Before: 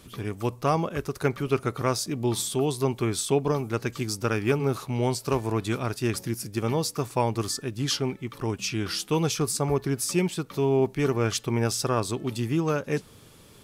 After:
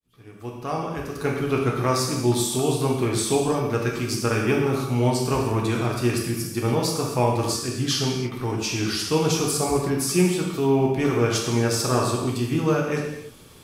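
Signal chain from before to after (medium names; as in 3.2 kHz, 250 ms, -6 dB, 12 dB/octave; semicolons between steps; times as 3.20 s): fade-in on the opening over 1.54 s; gated-style reverb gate 350 ms falling, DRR -2 dB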